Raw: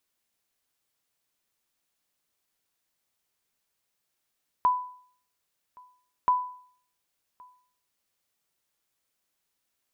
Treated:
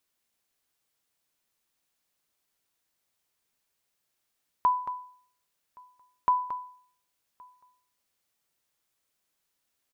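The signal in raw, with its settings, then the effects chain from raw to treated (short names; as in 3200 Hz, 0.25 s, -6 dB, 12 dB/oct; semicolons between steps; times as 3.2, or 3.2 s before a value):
sonar ping 997 Hz, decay 0.55 s, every 1.63 s, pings 2, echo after 1.12 s, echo -28 dB -15.5 dBFS
echo 0.225 s -10.5 dB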